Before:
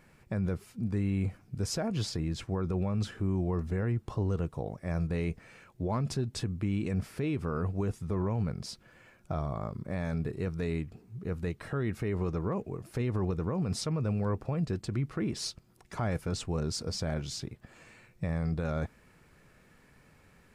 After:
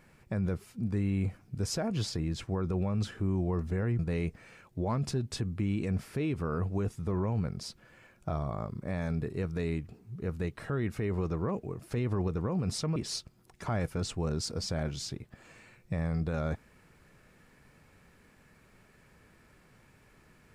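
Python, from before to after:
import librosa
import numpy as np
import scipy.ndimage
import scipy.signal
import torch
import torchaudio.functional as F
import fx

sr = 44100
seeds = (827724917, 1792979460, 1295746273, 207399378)

y = fx.edit(x, sr, fx.cut(start_s=3.99, length_s=1.03),
    fx.cut(start_s=13.99, length_s=1.28), tone=tone)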